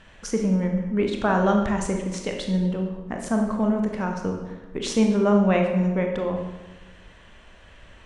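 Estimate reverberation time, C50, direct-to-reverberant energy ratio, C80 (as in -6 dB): 1.2 s, 4.5 dB, 2.5 dB, 7.0 dB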